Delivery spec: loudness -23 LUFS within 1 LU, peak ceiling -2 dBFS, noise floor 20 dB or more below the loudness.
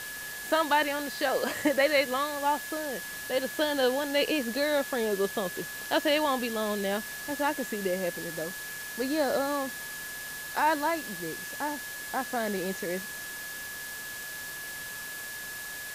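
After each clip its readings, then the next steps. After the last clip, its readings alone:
steady tone 1700 Hz; tone level -39 dBFS; noise floor -39 dBFS; noise floor target -50 dBFS; loudness -30.0 LUFS; peak -12.0 dBFS; loudness target -23.0 LUFS
-> notch 1700 Hz, Q 30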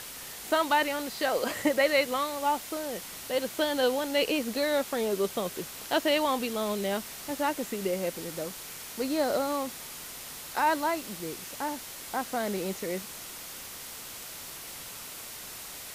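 steady tone none; noise floor -43 dBFS; noise floor target -51 dBFS
-> denoiser 8 dB, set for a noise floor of -43 dBFS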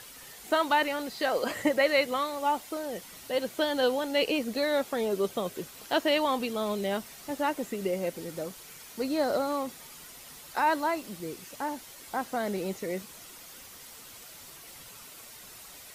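noise floor -48 dBFS; noise floor target -50 dBFS
-> denoiser 6 dB, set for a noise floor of -48 dBFS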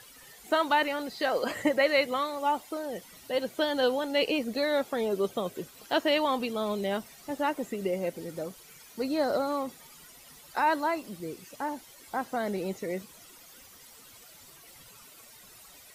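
noise floor -53 dBFS; loudness -30.0 LUFS; peak -12.5 dBFS; loudness target -23.0 LUFS
-> gain +7 dB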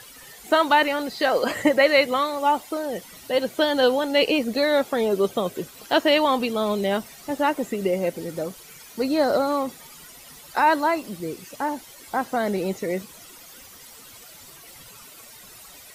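loudness -23.0 LUFS; peak -5.5 dBFS; noise floor -46 dBFS

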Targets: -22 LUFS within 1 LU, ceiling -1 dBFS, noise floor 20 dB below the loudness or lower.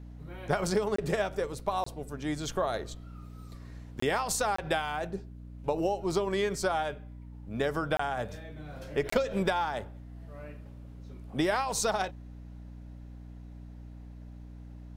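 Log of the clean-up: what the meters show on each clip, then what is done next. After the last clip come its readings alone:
dropouts 6; longest dropout 24 ms; hum 60 Hz; harmonics up to 300 Hz; hum level -43 dBFS; loudness -31.5 LUFS; peak -14.0 dBFS; loudness target -22.0 LUFS
-> interpolate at 0.96/1.84/4/4.56/7.97/9.1, 24 ms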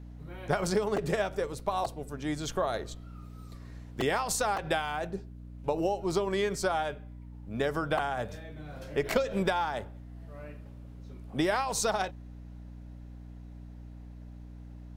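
dropouts 0; hum 60 Hz; harmonics up to 300 Hz; hum level -43 dBFS
-> notches 60/120/180/240/300 Hz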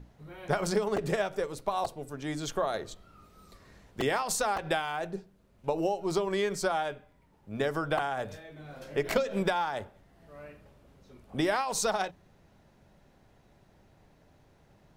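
hum none; loudness -31.5 LUFS; peak -14.5 dBFS; loudness target -22.0 LUFS
-> gain +9.5 dB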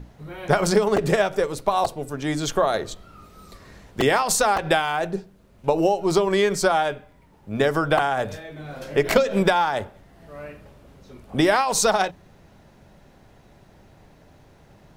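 loudness -22.0 LUFS; peak -5.0 dBFS; noise floor -53 dBFS

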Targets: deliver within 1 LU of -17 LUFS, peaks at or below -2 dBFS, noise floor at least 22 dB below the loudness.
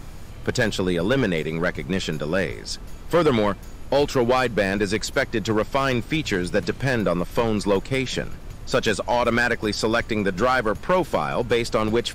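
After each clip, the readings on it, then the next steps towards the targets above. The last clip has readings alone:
clipped 0.9%; flat tops at -12.5 dBFS; noise floor -38 dBFS; noise floor target -45 dBFS; loudness -23.0 LUFS; peak -12.5 dBFS; loudness target -17.0 LUFS
-> clip repair -12.5 dBFS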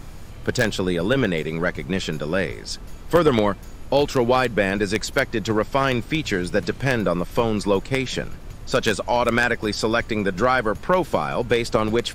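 clipped 0.0%; noise floor -38 dBFS; noise floor target -44 dBFS
-> noise print and reduce 6 dB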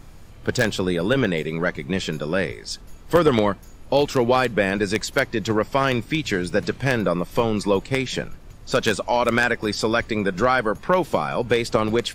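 noise floor -43 dBFS; noise floor target -44 dBFS
-> noise print and reduce 6 dB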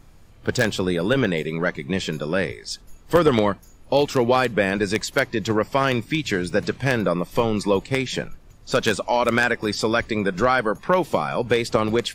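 noise floor -48 dBFS; loudness -22.0 LUFS; peak -3.5 dBFS; loudness target -17.0 LUFS
-> gain +5 dB; limiter -2 dBFS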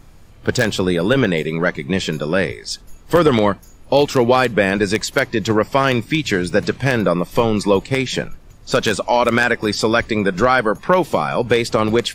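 loudness -17.5 LUFS; peak -2.0 dBFS; noise floor -43 dBFS

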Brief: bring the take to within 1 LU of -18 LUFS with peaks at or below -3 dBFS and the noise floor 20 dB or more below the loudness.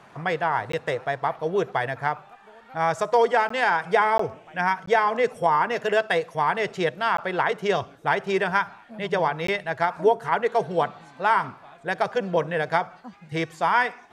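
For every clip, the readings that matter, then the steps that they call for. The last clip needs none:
dropouts 6; longest dropout 14 ms; loudness -24.0 LUFS; peak -7.5 dBFS; loudness target -18.0 LUFS
-> interpolate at 0.72/3.49/4.18/4.86/7.17/9.47, 14 ms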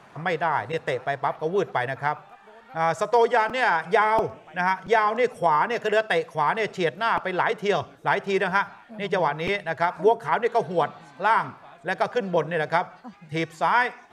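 dropouts 0; loudness -24.0 LUFS; peak -7.5 dBFS; loudness target -18.0 LUFS
-> gain +6 dB; limiter -3 dBFS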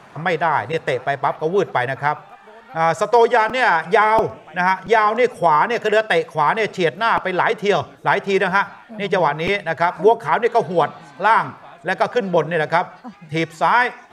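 loudness -18.5 LUFS; peak -3.0 dBFS; noise floor -45 dBFS

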